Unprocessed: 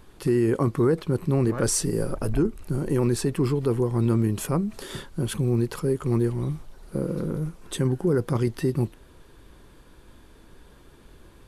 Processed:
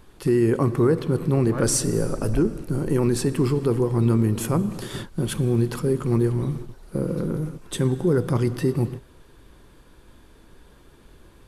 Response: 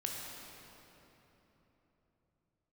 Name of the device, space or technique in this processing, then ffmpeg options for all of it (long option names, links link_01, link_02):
keyed gated reverb: -filter_complex "[0:a]asplit=3[link_01][link_02][link_03];[1:a]atrim=start_sample=2205[link_04];[link_02][link_04]afir=irnorm=-1:irlink=0[link_05];[link_03]apad=whole_len=506115[link_06];[link_05][link_06]sidechaingate=range=-33dB:threshold=-37dB:ratio=16:detection=peak,volume=-10dB[link_07];[link_01][link_07]amix=inputs=2:normalize=0"